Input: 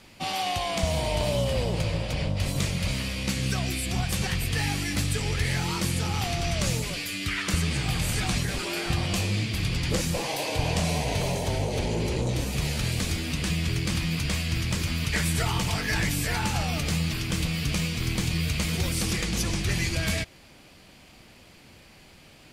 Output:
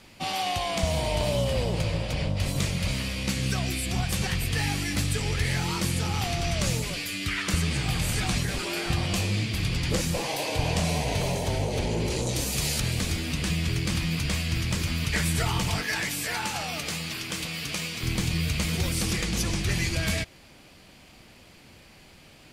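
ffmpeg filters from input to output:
-filter_complex "[0:a]asettb=1/sr,asplit=3[a][b][c];[a]atrim=end=12.104[d];[b]atrim=start=12.1:end=12.8,asetpts=PTS-STARTPTS,afade=t=in:d=0.004:c=qsin,afade=t=out:st=0.696:d=0.004:c=qsin,bass=f=250:g=-3,treble=f=4k:g=9[e];[c]atrim=start=12.796[f];[d][e]acrossfade=d=0.004:c1=hsin:c2=qsin[g];[g][f]acrossfade=d=0.004:c1=qsin:c2=hsin,asettb=1/sr,asplit=3[h][i][j];[h]atrim=end=15.824[k];[i]atrim=start=15.82:end=18.03,asetpts=PTS-STARTPTS,afade=t=in:d=0.004:c=qsin,afade=t=out:st=2.206:d=0.004:c=qsin,highpass=f=450:p=1[l];[j]atrim=start=18.026[m];[k][l]acrossfade=d=0.004:c1=hsin:c2=qsin[n];[n][m]acrossfade=d=0.004:c1=qsin:c2=hsin"

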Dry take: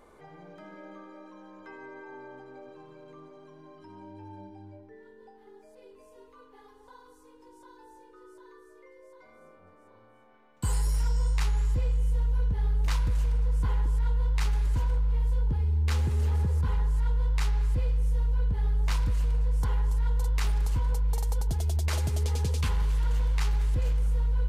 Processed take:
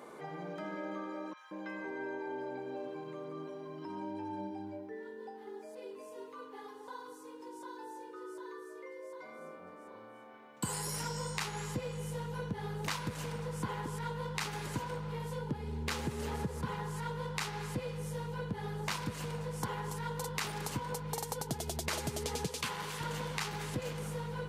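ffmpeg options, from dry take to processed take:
-filter_complex "[0:a]asettb=1/sr,asplit=3[a][b][c];[a]atrim=end=1.334[d];[b]atrim=start=1.33:end=3.85,asetpts=PTS-STARTPTS,afade=t=in:d=0.004:c=qsin,afade=t=out:st=2.516:d=0.004:c=qsin,acrossover=split=1200|5900[e][f][g];[g]adelay=40[h];[e]adelay=180[i];[i][f][h]amix=inputs=3:normalize=0,atrim=end_sample=111132[j];[c]atrim=start=3.846[k];[d][j]acrossfade=d=0.004:c1=hsin:c2=qsin[l];[l][k]acrossfade=d=0.004:c1=qsin:c2=hsin,asettb=1/sr,asplit=3[m][n][o];[m]atrim=end=22.464[p];[n]atrim=start=22.46:end=23.01,asetpts=PTS-STARTPTS,afade=t=in:d=0.004:c=qsin,afade=t=out:st=0.546:d=0.004:c=qsin,lowshelf=f=320:g=-9.5[q];[o]atrim=start=23.006[r];[p][q]acrossfade=d=0.004:c1=hsin:c2=qsin[s];[s][r]acrossfade=d=0.004:c1=qsin:c2=hsin,highpass=f=140:w=0.5412,highpass=f=140:w=1.3066,acompressor=threshold=-41dB:ratio=3,volume=6.5dB"

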